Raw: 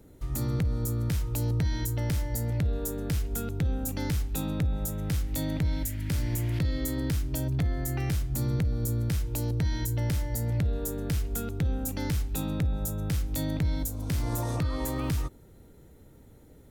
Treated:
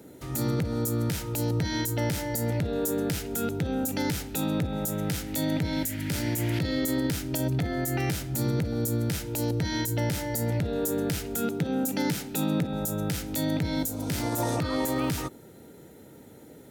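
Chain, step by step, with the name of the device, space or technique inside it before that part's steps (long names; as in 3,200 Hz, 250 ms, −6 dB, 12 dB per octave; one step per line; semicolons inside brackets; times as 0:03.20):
PA system with an anti-feedback notch (high-pass filter 180 Hz 12 dB per octave; Butterworth band-reject 1,100 Hz, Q 7.3; brickwall limiter −27 dBFS, peak gain reduction 7.5 dB)
0:11.42–0:12.73: low shelf with overshoot 110 Hz −11 dB, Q 1.5
level +8.5 dB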